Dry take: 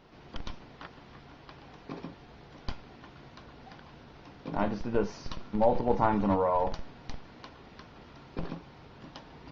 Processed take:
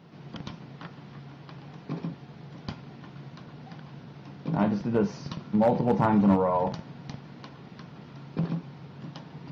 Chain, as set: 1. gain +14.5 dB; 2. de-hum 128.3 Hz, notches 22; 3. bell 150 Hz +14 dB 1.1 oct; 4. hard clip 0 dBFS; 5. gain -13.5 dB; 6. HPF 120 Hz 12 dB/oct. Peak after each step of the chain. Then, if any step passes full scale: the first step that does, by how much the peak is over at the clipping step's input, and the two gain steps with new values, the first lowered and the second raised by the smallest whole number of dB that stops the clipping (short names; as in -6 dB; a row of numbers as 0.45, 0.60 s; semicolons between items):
+3.5, +3.5, +4.5, 0.0, -13.5, -9.0 dBFS; step 1, 4.5 dB; step 1 +9.5 dB, step 5 -8.5 dB